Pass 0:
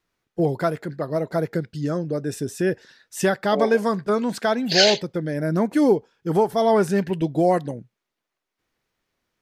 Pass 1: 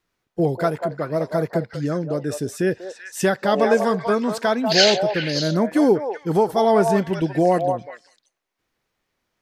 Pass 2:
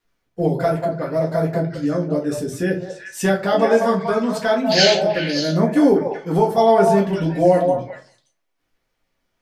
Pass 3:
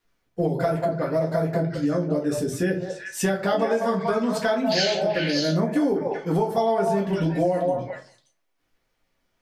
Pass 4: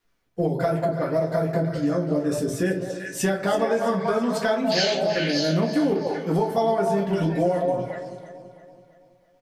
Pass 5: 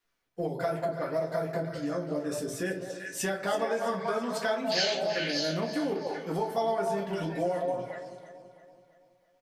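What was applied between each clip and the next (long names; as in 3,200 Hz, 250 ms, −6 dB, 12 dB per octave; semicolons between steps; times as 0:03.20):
echo through a band-pass that steps 192 ms, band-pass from 750 Hz, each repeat 1.4 octaves, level −2.5 dB; level +1 dB
rectangular room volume 120 cubic metres, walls furnished, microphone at 1.8 metres; level −3 dB
downward compressor 6 to 1, threshold −19 dBFS, peak gain reduction 10 dB
repeating echo 331 ms, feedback 47%, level −13 dB
low-shelf EQ 390 Hz −9 dB; level −4 dB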